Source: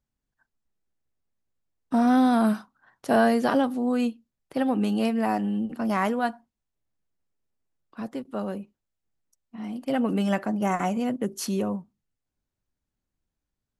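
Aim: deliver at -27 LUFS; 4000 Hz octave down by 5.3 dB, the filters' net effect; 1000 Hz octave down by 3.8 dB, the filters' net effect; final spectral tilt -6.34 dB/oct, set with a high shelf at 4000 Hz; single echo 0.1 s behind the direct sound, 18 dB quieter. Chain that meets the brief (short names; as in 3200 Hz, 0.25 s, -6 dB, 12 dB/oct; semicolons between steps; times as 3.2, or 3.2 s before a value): bell 1000 Hz -5.5 dB; high shelf 4000 Hz -5 dB; bell 4000 Hz -4 dB; echo 0.1 s -18 dB; gain -0.5 dB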